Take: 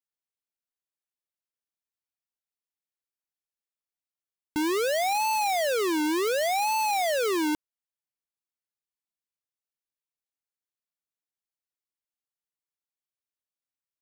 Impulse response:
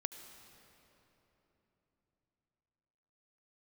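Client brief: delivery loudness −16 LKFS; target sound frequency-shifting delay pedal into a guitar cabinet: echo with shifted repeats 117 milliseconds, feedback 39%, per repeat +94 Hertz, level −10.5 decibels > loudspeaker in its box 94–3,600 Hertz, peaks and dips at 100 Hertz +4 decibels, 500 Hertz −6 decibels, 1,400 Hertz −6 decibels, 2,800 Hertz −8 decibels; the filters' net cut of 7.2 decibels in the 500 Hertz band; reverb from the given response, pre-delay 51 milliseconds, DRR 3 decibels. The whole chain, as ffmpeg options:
-filter_complex "[0:a]equalizer=frequency=500:width_type=o:gain=-7,asplit=2[link_01][link_02];[1:a]atrim=start_sample=2205,adelay=51[link_03];[link_02][link_03]afir=irnorm=-1:irlink=0,volume=-2dB[link_04];[link_01][link_04]amix=inputs=2:normalize=0,asplit=5[link_05][link_06][link_07][link_08][link_09];[link_06]adelay=117,afreqshift=94,volume=-10.5dB[link_10];[link_07]adelay=234,afreqshift=188,volume=-18.7dB[link_11];[link_08]adelay=351,afreqshift=282,volume=-26.9dB[link_12];[link_09]adelay=468,afreqshift=376,volume=-35dB[link_13];[link_05][link_10][link_11][link_12][link_13]amix=inputs=5:normalize=0,highpass=94,equalizer=frequency=100:width_type=q:width=4:gain=4,equalizer=frequency=500:width_type=q:width=4:gain=-6,equalizer=frequency=1400:width_type=q:width=4:gain=-6,equalizer=frequency=2800:width_type=q:width=4:gain=-8,lowpass=frequency=3600:width=0.5412,lowpass=frequency=3600:width=1.3066,volume=12.5dB"

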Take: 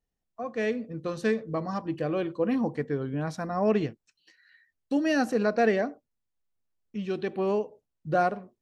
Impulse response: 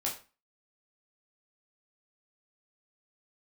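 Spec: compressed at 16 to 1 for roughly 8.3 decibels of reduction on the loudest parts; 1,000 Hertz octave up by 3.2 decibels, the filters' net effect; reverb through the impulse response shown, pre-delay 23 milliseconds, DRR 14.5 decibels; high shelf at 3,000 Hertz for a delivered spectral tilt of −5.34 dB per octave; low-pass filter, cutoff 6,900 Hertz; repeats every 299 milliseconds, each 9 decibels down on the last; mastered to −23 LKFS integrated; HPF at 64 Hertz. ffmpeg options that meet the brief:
-filter_complex "[0:a]highpass=64,lowpass=6900,equalizer=frequency=1000:width_type=o:gain=4.5,highshelf=frequency=3000:gain=5.5,acompressor=threshold=-25dB:ratio=16,aecho=1:1:299|598|897|1196:0.355|0.124|0.0435|0.0152,asplit=2[link_01][link_02];[1:a]atrim=start_sample=2205,adelay=23[link_03];[link_02][link_03]afir=irnorm=-1:irlink=0,volume=-18dB[link_04];[link_01][link_04]amix=inputs=2:normalize=0,volume=8.5dB"

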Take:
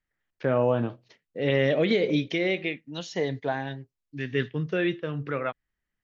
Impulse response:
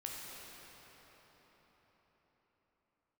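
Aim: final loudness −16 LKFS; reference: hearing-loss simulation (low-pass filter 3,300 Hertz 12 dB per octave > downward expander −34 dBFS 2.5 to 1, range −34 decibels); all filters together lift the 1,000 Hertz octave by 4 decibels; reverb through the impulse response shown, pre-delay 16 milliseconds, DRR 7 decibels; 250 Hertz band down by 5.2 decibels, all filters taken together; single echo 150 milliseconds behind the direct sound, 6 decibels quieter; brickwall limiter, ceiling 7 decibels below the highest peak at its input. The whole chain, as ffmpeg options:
-filter_complex "[0:a]equalizer=frequency=250:width_type=o:gain=-8,equalizer=frequency=1000:width_type=o:gain=6,alimiter=limit=-18.5dB:level=0:latency=1,aecho=1:1:150:0.501,asplit=2[link_01][link_02];[1:a]atrim=start_sample=2205,adelay=16[link_03];[link_02][link_03]afir=irnorm=-1:irlink=0,volume=-7dB[link_04];[link_01][link_04]amix=inputs=2:normalize=0,lowpass=3300,agate=range=-34dB:threshold=-34dB:ratio=2.5,volume=13.5dB"

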